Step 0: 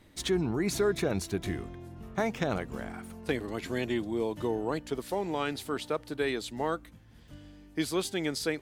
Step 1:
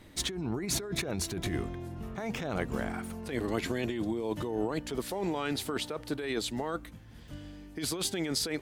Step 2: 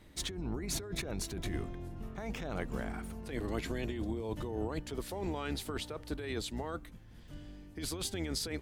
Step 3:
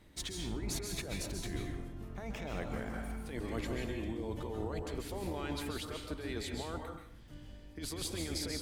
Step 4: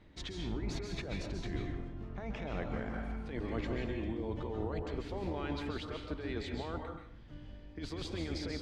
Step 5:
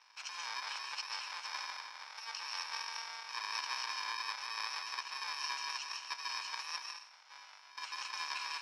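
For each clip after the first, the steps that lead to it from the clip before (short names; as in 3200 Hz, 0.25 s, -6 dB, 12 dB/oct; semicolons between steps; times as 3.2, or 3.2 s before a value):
negative-ratio compressor -34 dBFS, ratio -1; gain +1.5 dB
octaver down 2 oct, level 0 dB; gain -5.5 dB
plate-style reverb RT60 0.62 s, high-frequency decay 0.9×, pre-delay 0.12 s, DRR 2 dB; gain -3 dB
air absorption 170 m; gain +1.5 dB
FFT order left unsorted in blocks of 64 samples; Chebyshev band-pass 960–5400 Hz, order 3; gain +8.5 dB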